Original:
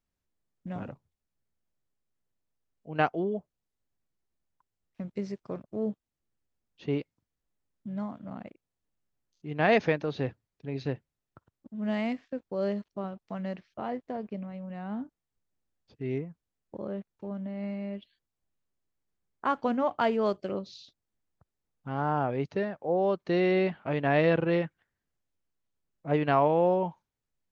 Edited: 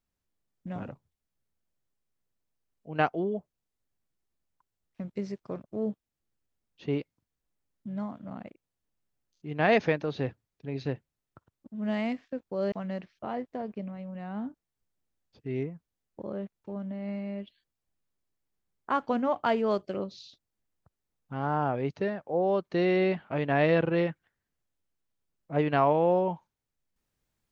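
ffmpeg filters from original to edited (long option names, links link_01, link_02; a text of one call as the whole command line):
ffmpeg -i in.wav -filter_complex "[0:a]asplit=2[link_01][link_02];[link_01]atrim=end=12.722[link_03];[link_02]atrim=start=13.268[link_04];[link_03][link_04]acrossfade=duration=0.004:curve1=hsin:curve2=hsin" out.wav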